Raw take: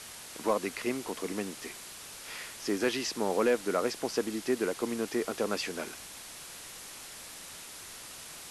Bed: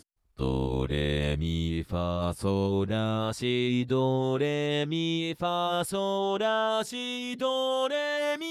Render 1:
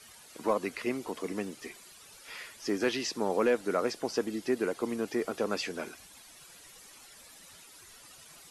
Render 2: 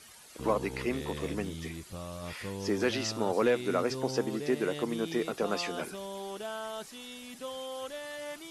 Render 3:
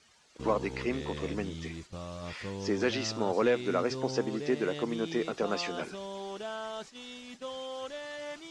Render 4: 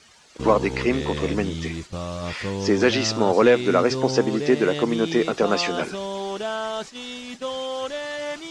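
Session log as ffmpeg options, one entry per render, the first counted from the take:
ffmpeg -i in.wav -af "afftdn=noise_reduction=12:noise_floor=-46" out.wav
ffmpeg -i in.wav -i bed.wav -filter_complex "[1:a]volume=-12dB[link_01];[0:a][link_01]amix=inputs=2:normalize=0" out.wav
ffmpeg -i in.wav -af "lowpass=frequency=7100:width=0.5412,lowpass=frequency=7100:width=1.3066,agate=range=-8dB:threshold=-46dB:ratio=16:detection=peak" out.wav
ffmpeg -i in.wav -af "volume=10.5dB" out.wav

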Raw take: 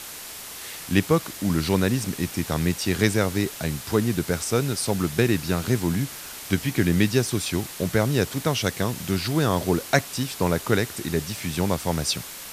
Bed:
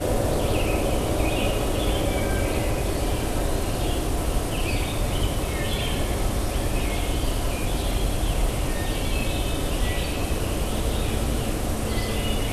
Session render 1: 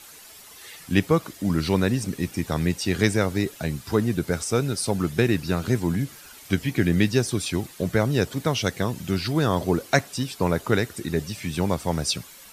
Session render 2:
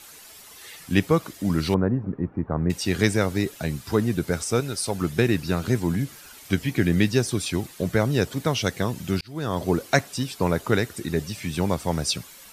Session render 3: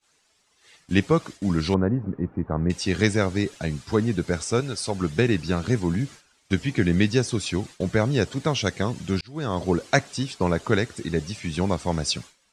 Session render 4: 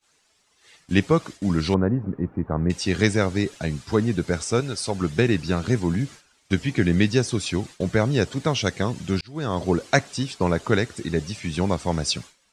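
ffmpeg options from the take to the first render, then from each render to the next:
ffmpeg -i in.wav -af "afftdn=noise_reduction=11:noise_floor=-38" out.wav
ffmpeg -i in.wav -filter_complex "[0:a]asettb=1/sr,asplit=3[link_01][link_02][link_03];[link_01]atrim=end=1.744[link_04];[link_02]atrim=start=1.74:end=2.7,asetpts=PTS-STARTPTS,afade=type=in:duration=0.004:curve=qsin,afade=type=out:start_time=0.956:duration=0.004:curve=qsin,lowpass=frequency=1300:width=0.5412,lowpass=frequency=1300:width=1.3066[link_05];[link_03]atrim=start=2.696[link_06];[link_04][link_05]acrossfade=duration=0.004:curve1=hsin:curve2=qsin[link_07];[link_07][link_06]acrossfade=duration=0.004:curve1=qsin:curve2=hsin,asettb=1/sr,asplit=3[link_08][link_09][link_10];[link_08]atrim=end=4.604[link_11];[link_09]atrim=start=4.6:end=5.02,asetpts=PTS-STARTPTS,afade=type=in:duration=0.004:curve=qsin,afade=type=out:start_time=0.416:duration=0.004:curve=qsin,equalizer=frequency=180:width_type=o:width=2.2:gain=-6[link_12];[link_10]atrim=start=5.016[link_13];[link_11][link_12]acrossfade=duration=0.004:curve1=hsin:curve2=qsin[link_14];[link_14][link_13]acrossfade=duration=0.004:curve1=qsin:curve2=hsin,asplit=2[link_15][link_16];[link_15]atrim=end=9.21,asetpts=PTS-STARTPTS,afade=type=out:start_time=9.206:duration=0.004:curve=hsin[link_17];[link_16]atrim=start=9.21,asetpts=PTS-STARTPTS,afade=type=in:duration=0.49[link_18];[link_17][link_18]concat=n=2:v=0:a=1" out.wav
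ffmpeg -i in.wav -af "agate=range=-33dB:threshold=-34dB:ratio=3:detection=peak,lowpass=frequency=8300:width=0.5412,lowpass=frequency=8300:width=1.3066" out.wav
ffmpeg -i in.wav -af "volume=1dB" out.wav

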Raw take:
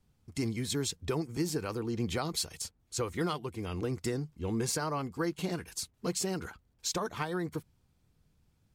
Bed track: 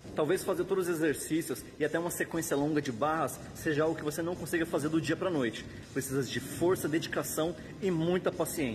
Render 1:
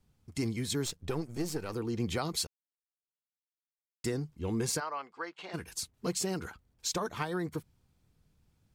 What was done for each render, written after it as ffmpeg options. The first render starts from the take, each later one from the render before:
ffmpeg -i in.wav -filter_complex "[0:a]asettb=1/sr,asplit=3[link_01][link_02][link_03];[link_01]atrim=end=0.854[link_04];[link_02]atrim=start=0.85:end=1.73,asetpts=PTS-STARTPTS,afade=type=in:duration=0.004:curve=qsin,afade=type=out:start_time=0.876:duration=0.004:curve=qsin,aeval=exprs='if(lt(val(0),0),0.447*val(0),val(0))':channel_layout=same[link_05];[link_03]atrim=start=1.726[link_06];[link_04][link_05]acrossfade=duration=0.004:curve1=hsin:curve2=qsin[link_07];[link_07][link_06]acrossfade=duration=0.004:curve1=qsin:curve2=hsin,asplit=3[link_08][link_09][link_10];[link_08]afade=type=out:start_time=4.79:duration=0.02[link_11];[link_09]highpass=750,lowpass=3200,afade=type=in:start_time=4.79:duration=0.02,afade=type=out:start_time=5.53:duration=0.02[link_12];[link_10]afade=type=in:start_time=5.53:duration=0.02[link_13];[link_11][link_12][link_13]amix=inputs=3:normalize=0,asplit=3[link_14][link_15][link_16];[link_14]atrim=end=2.47,asetpts=PTS-STARTPTS,afade=type=out:start_time=2.466:duration=0.004:curve=hsin[link_17];[link_15]atrim=start=2.47:end=4.04,asetpts=PTS-STARTPTS,volume=0[link_18];[link_16]atrim=start=4.04,asetpts=PTS-STARTPTS,afade=type=in:duration=0.004:curve=hsin[link_19];[link_17][link_18][link_19]concat=n=3:v=0:a=1" out.wav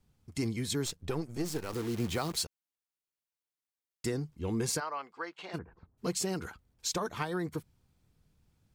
ffmpeg -i in.wav -filter_complex "[0:a]asplit=3[link_01][link_02][link_03];[link_01]afade=type=out:start_time=1.44:duration=0.02[link_04];[link_02]acrusher=bits=8:dc=4:mix=0:aa=0.000001,afade=type=in:start_time=1.44:duration=0.02,afade=type=out:start_time=2.42:duration=0.02[link_05];[link_03]afade=type=in:start_time=2.42:duration=0.02[link_06];[link_04][link_05][link_06]amix=inputs=3:normalize=0,asplit=3[link_07][link_08][link_09];[link_07]afade=type=out:start_time=5.57:duration=0.02[link_10];[link_08]lowpass=frequency=1300:width=0.5412,lowpass=frequency=1300:width=1.3066,afade=type=in:start_time=5.57:duration=0.02,afade=type=out:start_time=5.97:duration=0.02[link_11];[link_09]afade=type=in:start_time=5.97:duration=0.02[link_12];[link_10][link_11][link_12]amix=inputs=3:normalize=0" out.wav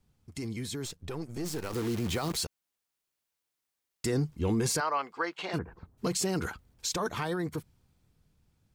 ffmpeg -i in.wav -af "alimiter=level_in=5dB:limit=-24dB:level=0:latency=1:release=10,volume=-5dB,dynaudnorm=framelen=300:gausssize=13:maxgain=8dB" out.wav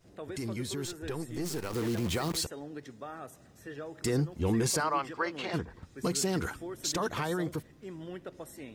ffmpeg -i in.wav -i bed.wav -filter_complex "[1:a]volume=-13dB[link_01];[0:a][link_01]amix=inputs=2:normalize=0" out.wav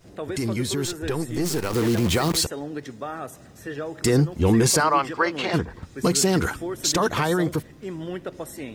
ffmpeg -i in.wav -af "volume=10dB" out.wav

